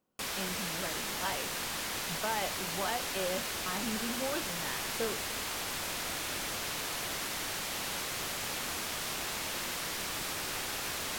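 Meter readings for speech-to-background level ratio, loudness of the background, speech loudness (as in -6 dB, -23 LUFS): -4.5 dB, -34.5 LUFS, -39.0 LUFS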